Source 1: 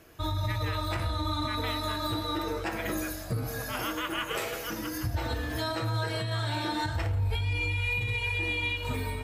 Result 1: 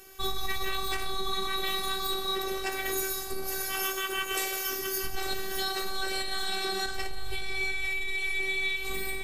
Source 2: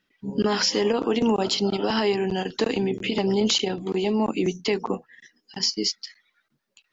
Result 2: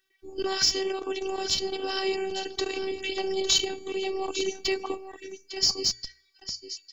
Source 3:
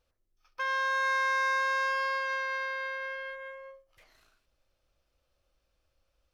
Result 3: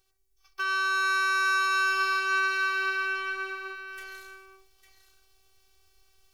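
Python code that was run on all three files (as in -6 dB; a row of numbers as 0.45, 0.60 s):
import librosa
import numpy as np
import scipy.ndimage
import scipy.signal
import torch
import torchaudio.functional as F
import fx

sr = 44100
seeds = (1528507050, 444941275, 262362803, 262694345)

p1 = fx.high_shelf(x, sr, hz=3300.0, db=11.5)
p2 = fx.rider(p1, sr, range_db=5, speed_s=2.0)
p3 = p2 + fx.echo_single(p2, sr, ms=853, db=-11.5, dry=0)
p4 = fx.robotise(p3, sr, hz=385.0)
p5 = fx.comb_fb(p4, sr, f0_hz=100.0, decay_s=0.83, harmonics='all', damping=0.0, mix_pct=30)
p6 = fx.schmitt(p5, sr, flips_db=-16.5)
p7 = p5 + (p6 * librosa.db_to_amplitude(-10.0))
p8 = fx.hum_notches(p7, sr, base_hz=60, count=2)
y = p8 * 10.0 ** (-30 / 20.0) / np.sqrt(np.mean(np.square(p8)))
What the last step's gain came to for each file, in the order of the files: +2.5, -4.5, +7.5 dB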